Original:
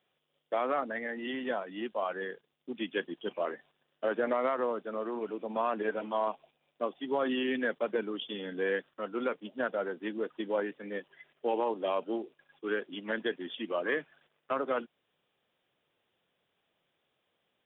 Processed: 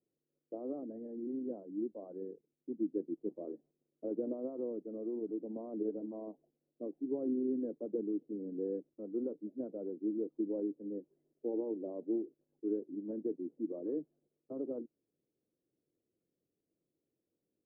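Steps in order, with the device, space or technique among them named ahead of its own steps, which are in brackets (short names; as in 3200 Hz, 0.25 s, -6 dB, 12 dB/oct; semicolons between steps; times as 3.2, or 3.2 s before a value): under water (LPF 460 Hz 24 dB/oct; bell 310 Hz +9 dB 0.4 oct); gain -4.5 dB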